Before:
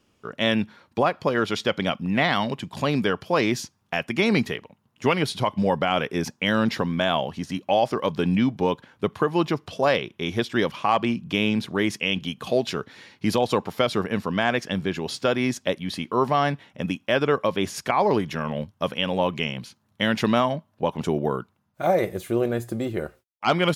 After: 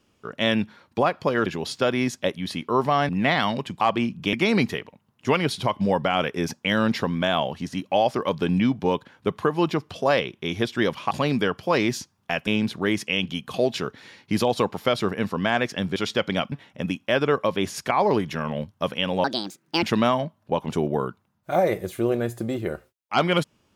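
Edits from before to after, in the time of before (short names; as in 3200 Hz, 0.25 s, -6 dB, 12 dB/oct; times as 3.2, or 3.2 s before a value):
1.46–2.02 swap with 14.89–16.52
2.74–4.1 swap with 10.88–11.4
19.24–20.14 speed 153%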